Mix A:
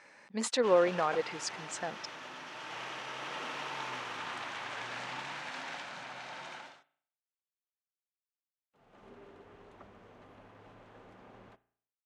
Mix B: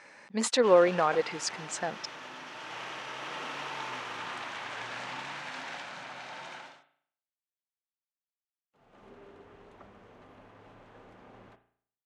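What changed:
speech +4.5 dB
background: send +8.5 dB

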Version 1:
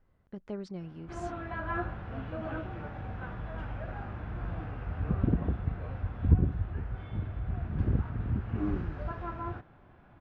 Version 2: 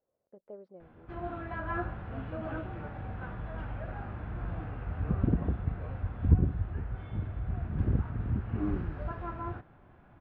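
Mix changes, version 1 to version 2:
speech: add resonant band-pass 550 Hz, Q 3.3
master: add high-frequency loss of the air 140 metres

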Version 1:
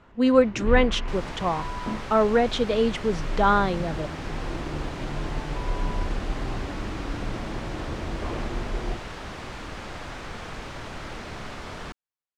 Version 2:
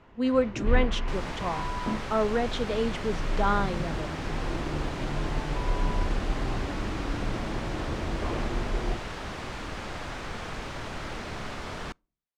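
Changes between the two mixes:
speech −8.0 dB
reverb: on, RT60 0.45 s

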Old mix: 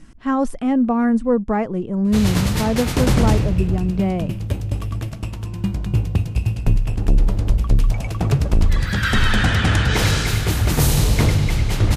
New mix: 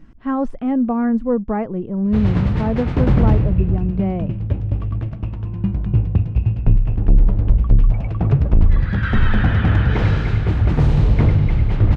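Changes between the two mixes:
background: add bass and treble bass +3 dB, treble −9 dB
master: add head-to-tape spacing loss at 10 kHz 28 dB

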